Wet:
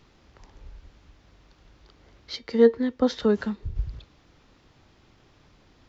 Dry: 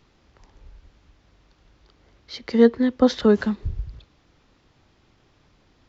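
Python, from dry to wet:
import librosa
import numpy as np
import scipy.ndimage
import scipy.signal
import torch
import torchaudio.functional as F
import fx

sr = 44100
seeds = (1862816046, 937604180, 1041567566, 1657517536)

y = fx.comb_fb(x, sr, f0_hz=460.0, decay_s=0.19, harmonics='all', damping=0.0, mix_pct=60, at=(2.35, 3.75), fade=0.02)
y = F.gain(torch.from_numpy(y), 2.0).numpy()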